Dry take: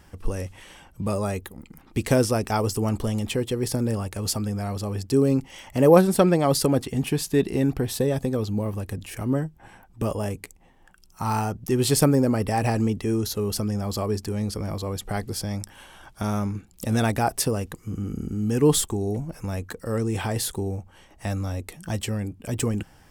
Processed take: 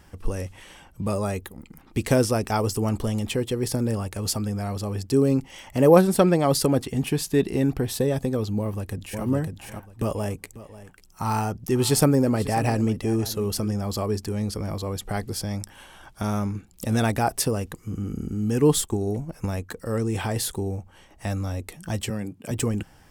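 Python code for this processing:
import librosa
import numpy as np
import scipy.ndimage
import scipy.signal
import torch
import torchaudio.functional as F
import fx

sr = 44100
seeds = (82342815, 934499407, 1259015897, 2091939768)

y = fx.echo_throw(x, sr, start_s=8.58, length_s=0.66, ms=550, feedback_pct=20, wet_db=-4.0)
y = fx.echo_single(y, sr, ms=542, db=-16.5, at=(10.38, 13.72), fade=0.02)
y = fx.transient(y, sr, attack_db=5, sustain_db=-4, at=(18.71, 19.69), fade=0.02)
y = fx.highpass(y, sr, hz=120.0, slope=24, at=(22.1, 22.51))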